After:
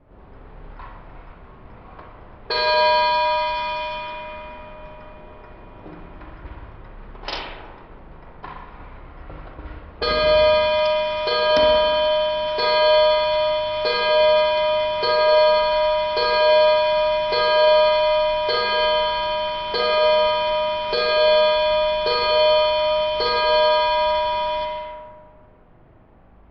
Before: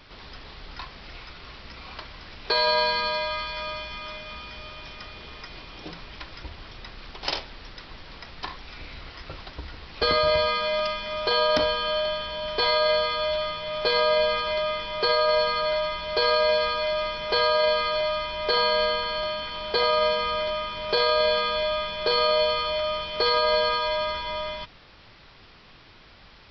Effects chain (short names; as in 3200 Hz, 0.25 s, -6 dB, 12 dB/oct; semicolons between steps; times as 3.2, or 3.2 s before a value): band noise 530–3200 Hz -54 dBFS; spring tank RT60 1.8 s, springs 39/59 ms, chirp 80 ms, DRR -0.5 dB; low-pass opened by the level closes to 490 Hz, open at -21 dBFS